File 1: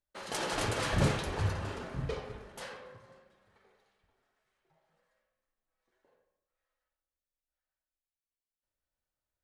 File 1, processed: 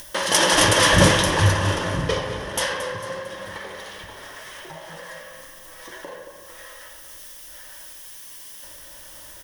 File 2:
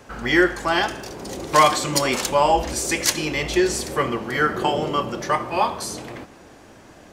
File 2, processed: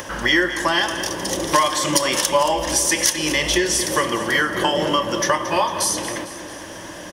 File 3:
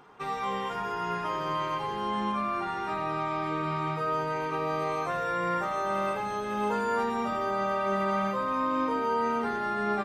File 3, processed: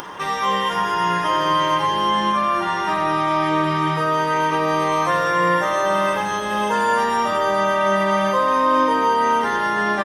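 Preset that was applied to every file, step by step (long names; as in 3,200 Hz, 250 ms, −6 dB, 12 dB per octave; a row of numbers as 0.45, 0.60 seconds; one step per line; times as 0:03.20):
upward compression, threshold −36 dBFS
spectral tilt +1.5 dB per octave
downward compressor 6 to 1, threshold −24 dBFS
EQ curve with evenly spaced ripples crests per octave 1.2, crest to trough 8 dB
repeating echo 225 ms, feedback 51%, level −12.5 dB
loudness normalisation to −19 LKFS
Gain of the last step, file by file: +15.0, +7.0, +11.0 decibels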